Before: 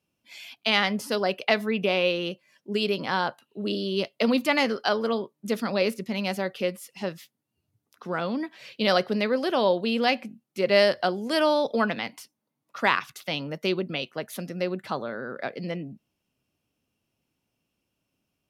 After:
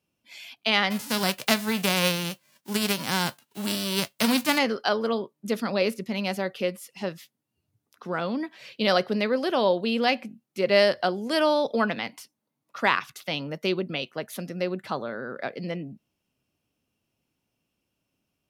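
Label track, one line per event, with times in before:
0.900000	4.570000	spectral envelope flattened exponent 0.3

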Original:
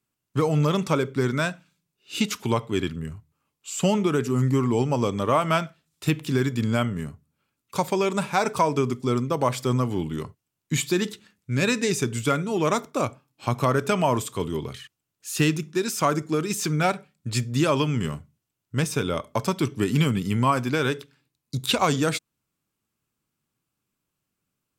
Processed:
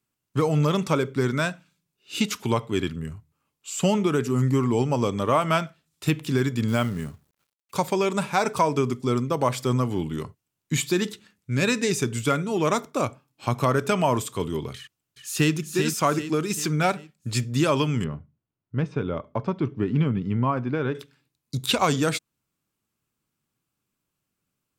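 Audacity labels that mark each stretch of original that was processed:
6.680000	7.770000	log-companded quantiser 6 bits
14.770000	15.540000	delay throw 390 ms, feedback 45%, level −6 dB
18.040000	20.950000	head-to-tape spacing loss at 10 kHz 41 dB

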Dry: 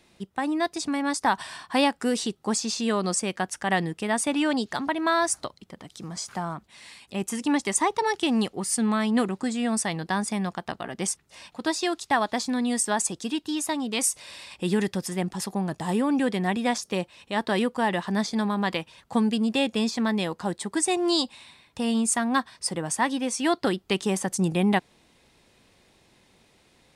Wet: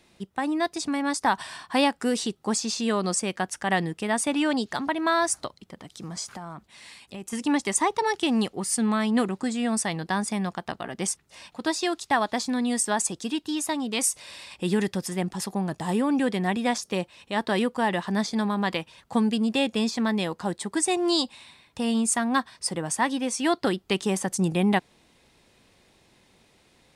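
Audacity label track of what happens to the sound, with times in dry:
6.320000	7.330000	downward compressor, threshold −34 dBFS

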